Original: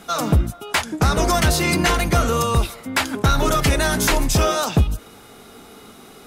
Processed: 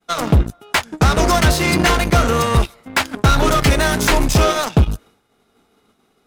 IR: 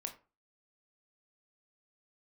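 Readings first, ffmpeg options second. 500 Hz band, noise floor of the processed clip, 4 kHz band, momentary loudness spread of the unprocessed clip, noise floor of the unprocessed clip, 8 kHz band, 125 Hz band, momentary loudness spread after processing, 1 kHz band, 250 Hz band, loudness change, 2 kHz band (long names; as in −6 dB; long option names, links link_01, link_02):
+3.0 dB, −62 dBFS, +2.5 dB, 5 LU, −44 dBFS, +0.5 dB, +3.5 dB, 6 LU, +3.5 dB, +3.0 dB, +3.0 dB, +3.5 dB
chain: -af "highshelf=frequency=7100:gain=-7,agate=range=-33dB:threshold=-37dB:ratio=3:detection=peak,aeval=exprs='0.355*(cos(1*acos(clip(val(0)/0.355,-1,1)))-cos(1*PI/2))+0.0398*(cos(7*acos(clip(val(0)/0.355,-1,1)))-cos(7*PI/2))':channel_layout=same,volume=3.5dB"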